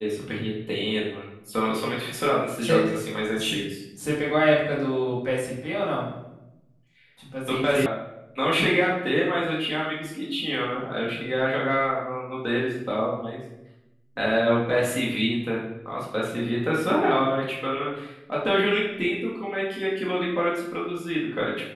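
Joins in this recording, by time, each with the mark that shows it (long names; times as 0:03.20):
0:07.86: cut off before it has died away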